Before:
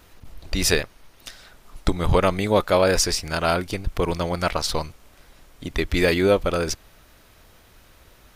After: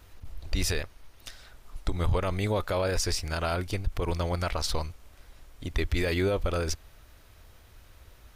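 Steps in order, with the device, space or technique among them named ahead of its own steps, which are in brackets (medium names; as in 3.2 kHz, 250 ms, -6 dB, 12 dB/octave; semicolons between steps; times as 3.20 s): car stereo with a boomy subwoofer (resonant low shelf 120 Hz +6 dB, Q 1.5; peak limiter -13 dBFS, peak gain reduction 9 dB); trim -5 dB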